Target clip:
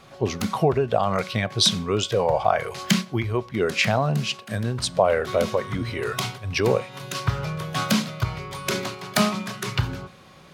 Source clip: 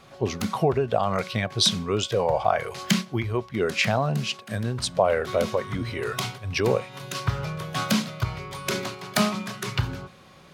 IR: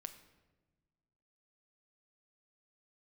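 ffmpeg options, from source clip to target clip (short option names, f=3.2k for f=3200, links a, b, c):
-filter_complex "[0:a]asplit=2[a][b];[1:a]atrim=start_sample=2205,atrim=end_sample=6174[c];[b][c]afir=irnorm=-1:irlink=0,volume=-8dB[d];[a][d]amix=inputs=2:normalize=0"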